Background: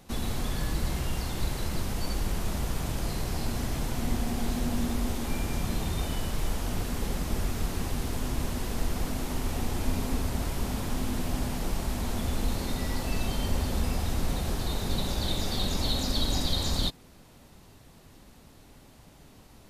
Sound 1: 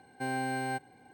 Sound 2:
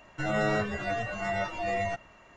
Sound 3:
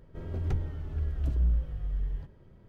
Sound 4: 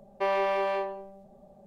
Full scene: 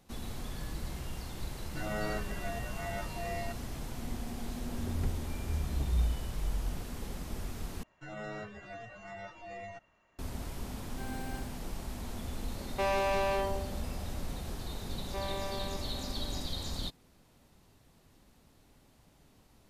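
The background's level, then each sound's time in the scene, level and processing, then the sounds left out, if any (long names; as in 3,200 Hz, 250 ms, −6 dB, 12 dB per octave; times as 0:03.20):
background −9.5 dB
0:01.57: mix in 2 −9 dB
0:04.53: mix in 3 −4 dB
0:07.83: overwrite with 2 −14.5 dB
0:10.78: mix in 1 −11.5 dB + every ending faded ahead of time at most 130 dB per second
0:12.58: mix in 4 −8 dB + leveller curve on the samples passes 3
0:14.93: mix in 4 −12.5 dB + single-tap delay 628 ms −11 dB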